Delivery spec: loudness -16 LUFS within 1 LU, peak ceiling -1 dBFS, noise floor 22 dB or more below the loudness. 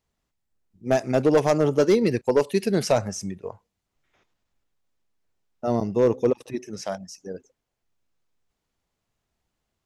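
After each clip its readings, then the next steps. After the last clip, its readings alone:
clipped samples 0.4%; clipping level -11.5 dBFS; loudness -23.0 LUFS; peak level -11.5 dBFS; loudness target -16.0 LUFS
-> clip repair -11.5 dBFS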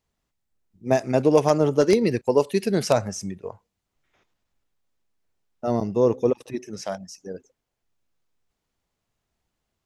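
clipped samples 0.0%; loudness -22.5 LUFS; peak level -3.0 dBFS; loudness target -16.0 LUFS
-> trim +6.5 dB; peak limiter -1 dBFS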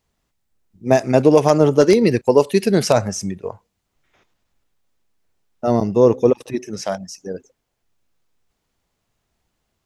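loudness -16.5 LUFS; peak level -1.0 dBFS; noise floor -74 dBFS

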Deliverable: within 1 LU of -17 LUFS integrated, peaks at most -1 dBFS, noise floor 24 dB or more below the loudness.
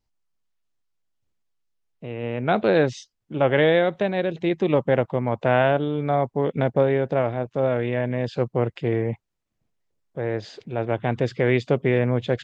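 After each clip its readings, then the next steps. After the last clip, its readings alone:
loudness -23.0 LUFS; peak level -5.0 dBFS; loudness target -17.0 LUFS
-> trim +6 dB; peak limiter -1 dBFS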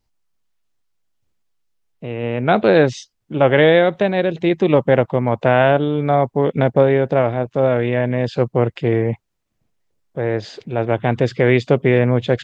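loudness -17.0 LUFS; peak level -1.0 dBFS; noise floor -72 dBFS

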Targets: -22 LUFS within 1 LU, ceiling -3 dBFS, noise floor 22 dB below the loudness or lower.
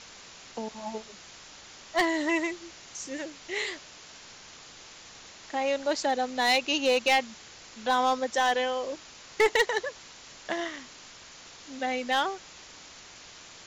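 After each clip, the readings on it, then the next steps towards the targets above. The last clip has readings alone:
clipped samples 0.4%; clipping level -16.5 dBFS; noise floor -49 dBFS; noise floor target -50 dBFS; loudness -28.0 LUFS; peak level -16.5 dBFS; loudness target -22.0 LUFS
-> clip repair -16.5 dBFS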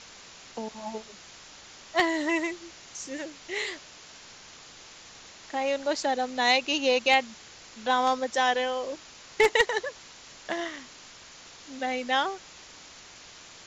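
clipped samples 0.0%; noise floor -49 dBFS; noise floor target -50 dBFS
-> noise reduction 6 dB, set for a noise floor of -49 dBFS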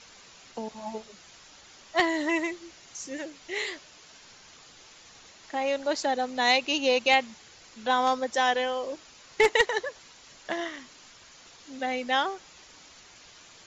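noise floor -53 dBFS; loudness -27.5 LUFS; peak level -7.5 dBFS; loudness target -22.0 LUFS
-> trim +5.5 dB; peak limiter -3 dBFS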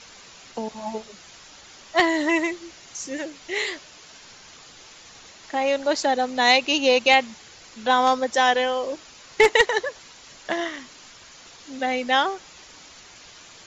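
loudness -22.0 LUFS; peak level -3.0 dBFS; noise floor -47 dBFS

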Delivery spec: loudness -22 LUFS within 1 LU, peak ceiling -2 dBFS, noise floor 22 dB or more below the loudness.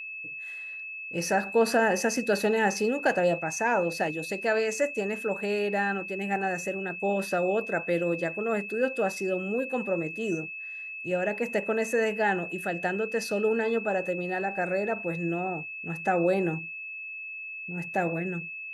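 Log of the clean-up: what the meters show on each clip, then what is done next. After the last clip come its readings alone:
steady tone 2.6 kHz; tone level -36 dBFS; loudness -28.5 LUFS; peak level -13.0 dBFS; loudness target -22.0 LUFS
-> band-stop 2.6 kHz, Q 30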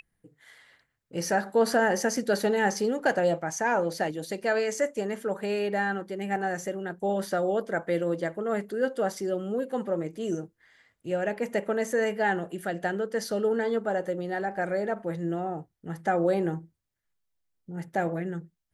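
steady tone not found; loudness -28.5 LUFS; peak level -12.5 dBFS; loudness target -22.0 LUFS
-> trim +6.5 dB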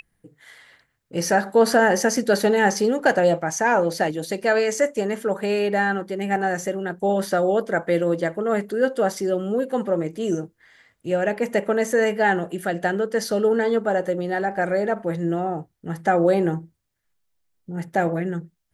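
loudness -22.0 LUFS; peak level -6.0 dBFS; noise floor -72 dBFS

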